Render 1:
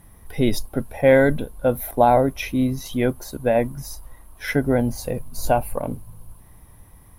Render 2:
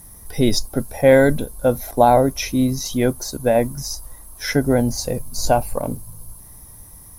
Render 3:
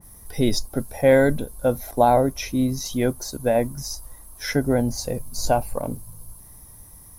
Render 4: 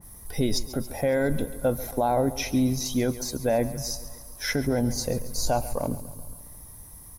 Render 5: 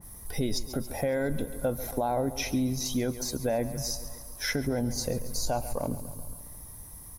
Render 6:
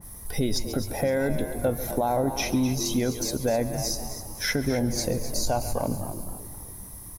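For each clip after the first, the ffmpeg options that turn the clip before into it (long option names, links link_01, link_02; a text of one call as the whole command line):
ffmpeg -i in.wav -filter_complex "[0:a]highshelf=frequency=4000:width_type=q:width=1.5:gain=10.5,acrossover=split=6400[link_01][link_02];[link_02]acompressor=threshold=-38dB:ratio=4:attack=1:release=60[link_03];[link_01][link_03]amix=inputs=2:normalize=0,volume=2.5dB" out.wav
ffmpeg -i in.wav -af "adynamicequalizer=threshold=0.0251:dfrequency=2200:dqfactor=0.7:tfrequency=2200:tqfactor=0.7:attack=5:release=100:ratio=0.375:range=2:mode=cutabove:tftype=highshelf,volume=-3.5dB" out.wav
ffmpeg -i in.wav -af "alimiter=limit=-15dB:level=0:latency=1:release=40,aecho=1:1:138|276|414|552|690|828:0.158|0.0919|0.0533|0.0309|0.0179|0.0104" out.wav
ffmpeg -i in.wav -af "acompressor=threshold=-28dB:ratio=2" out.wav
ffmpeg -i in.wav -filter_complex "[0:a]asplit=5[link_01][link_02][link_03][link_04][link_05];[link_02]adelay=256,afreqshift=88,volume=-11.5dB[link_06];[link_03]adelay=512,afreqshift=176,volume=-20.6dB[link_07];[link_04]adelay=768,afreqshift=264,volume=-29.7dB[link_08];[link_05]adelay=1024,afreqshift=352,volume=-38.9dB[link_09];[link_01][link_06][link_07][link_08][link_09]amix=inputs=5:normalize=0,volume=3.5dB" out.wav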